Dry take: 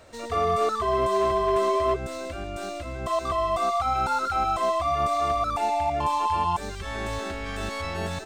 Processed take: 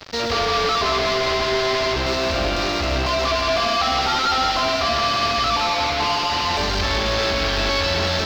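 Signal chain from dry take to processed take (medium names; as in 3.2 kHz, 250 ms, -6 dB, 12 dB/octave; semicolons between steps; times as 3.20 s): fuzz box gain 48 dB, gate -46 dBFS; word length cut 6-bit, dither none; resonant high shelf 6.8 kHz -13.5 dB, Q 3; on a send: two-band feedback delay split 320 Hz, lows 105 ms, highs 170 ms, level -5 dB; on the sum: trim -8.5 dB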